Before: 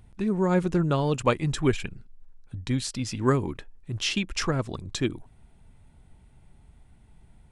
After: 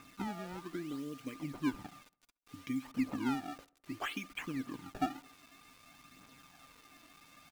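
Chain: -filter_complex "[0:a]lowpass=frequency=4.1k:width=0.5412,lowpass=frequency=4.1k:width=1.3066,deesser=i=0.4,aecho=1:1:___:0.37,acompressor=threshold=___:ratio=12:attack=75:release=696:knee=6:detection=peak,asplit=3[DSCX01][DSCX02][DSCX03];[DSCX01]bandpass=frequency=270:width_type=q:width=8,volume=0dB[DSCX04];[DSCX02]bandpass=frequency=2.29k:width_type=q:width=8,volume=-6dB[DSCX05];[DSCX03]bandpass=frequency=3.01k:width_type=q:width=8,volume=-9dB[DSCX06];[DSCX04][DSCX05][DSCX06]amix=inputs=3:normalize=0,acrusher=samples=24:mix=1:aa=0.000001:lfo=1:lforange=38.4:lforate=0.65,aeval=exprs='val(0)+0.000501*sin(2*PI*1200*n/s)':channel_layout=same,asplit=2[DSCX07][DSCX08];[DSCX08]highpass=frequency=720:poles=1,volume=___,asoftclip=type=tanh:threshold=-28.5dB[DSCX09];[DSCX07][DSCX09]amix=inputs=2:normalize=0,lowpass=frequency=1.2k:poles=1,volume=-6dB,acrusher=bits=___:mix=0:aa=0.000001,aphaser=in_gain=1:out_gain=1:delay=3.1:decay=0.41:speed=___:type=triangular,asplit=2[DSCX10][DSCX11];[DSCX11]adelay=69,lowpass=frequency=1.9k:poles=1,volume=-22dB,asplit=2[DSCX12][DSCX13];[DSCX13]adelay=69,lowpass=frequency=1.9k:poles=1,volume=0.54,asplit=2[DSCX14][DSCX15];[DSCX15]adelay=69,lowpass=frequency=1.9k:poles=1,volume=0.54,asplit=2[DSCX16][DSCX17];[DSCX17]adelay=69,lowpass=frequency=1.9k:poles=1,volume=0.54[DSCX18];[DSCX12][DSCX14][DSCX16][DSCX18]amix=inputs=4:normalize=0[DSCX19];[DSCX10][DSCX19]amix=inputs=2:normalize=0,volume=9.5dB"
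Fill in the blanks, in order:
6.5, -32dB, 5dB, 10, 0.64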